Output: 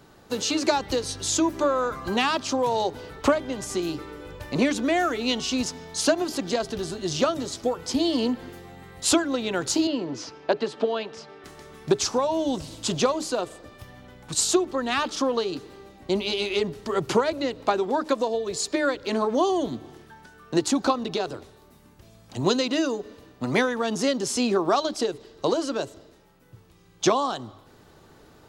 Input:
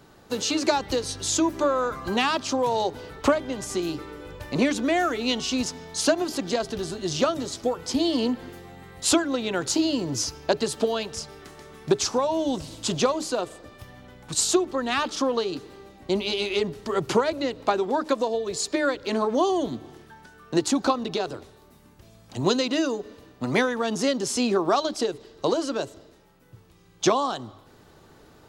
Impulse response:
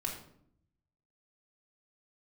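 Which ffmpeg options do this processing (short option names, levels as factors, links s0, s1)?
-filter_complex "[0:a]asettb=1/sr,asplit=3[s0][s1][s2];[s0]atrim=end=9.874[s3];[s1]atrim=start=9.87:end=11.44,asetpts=PTS-STARTPTS,afade=t=in:d=0.004:c=qsin,afade=t=out:st=1.566:d=0.004:c=qsin,highpass=220,lowpass=3100[s4];[s2]atrim=start=11.436[s5];[s3][s4]acrossfade=d=0.004:c1=hsin:c2=qsin[s6];[s6][s5]acrossfade=d=0.004:c1=qsin:c2=hsin"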